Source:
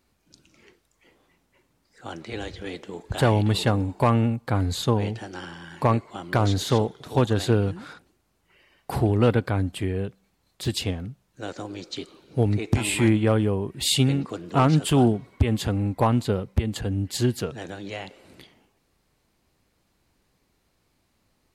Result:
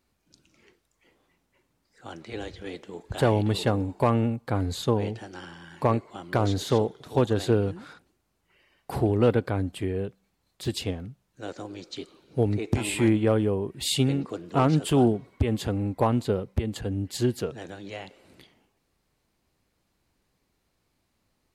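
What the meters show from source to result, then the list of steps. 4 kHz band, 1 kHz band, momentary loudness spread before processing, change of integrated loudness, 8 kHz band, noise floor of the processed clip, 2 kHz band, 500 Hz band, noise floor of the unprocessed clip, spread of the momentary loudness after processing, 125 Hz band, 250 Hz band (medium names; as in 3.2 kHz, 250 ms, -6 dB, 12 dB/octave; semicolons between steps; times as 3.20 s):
-4.5 dB, -3.0 dB, 16 LU, -2.0 dB, -4.5 dB, -74 dBFS, -4.0 dB, 0.0 dB, -70 dBFS, 17 LU, -4.0 dB, -2.0 dB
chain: dynamic bell 430 Hz, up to +5 dB, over -35 dBFS, Q 0.92; trim -4.5 dB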